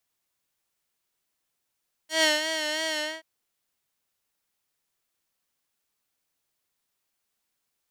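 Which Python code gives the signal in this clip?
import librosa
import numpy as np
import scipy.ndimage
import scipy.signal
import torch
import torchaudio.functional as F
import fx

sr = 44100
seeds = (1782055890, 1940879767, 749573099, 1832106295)

y = fx.sub_patch_vibrato(sr, seeds[0], note=75, wave='square', wave2='saw', interval_st=0, detune_cents=16, level2_db=-9.5, sub_db=-1.0, noise_db=-30.0, kind='bandpass', cutoff_hz=2100.0, q=0.75, env_oct=2.0, env_decay_s=0.05, env_sustain_pct=40, attack_ms=144.0, decay_s=0.17, sustain_db=-9.0, release_s=0.23, note_s=0.9, lfo_hz=3.0, vibrato_cents=53)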